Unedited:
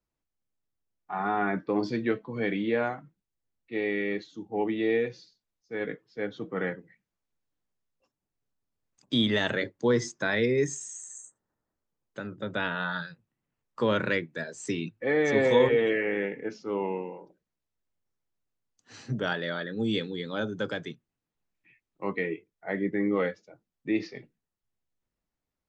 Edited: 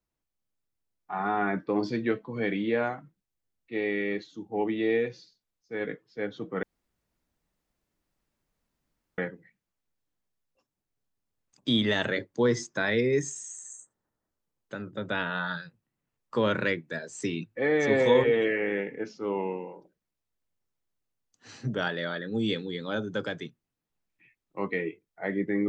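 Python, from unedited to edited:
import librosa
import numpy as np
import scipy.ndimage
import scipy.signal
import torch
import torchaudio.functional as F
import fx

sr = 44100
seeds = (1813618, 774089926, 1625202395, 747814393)

y = fx.edit(x, sr, fx.insert_room_tone(at_s=6.63, length_s=2.55), tone=tone)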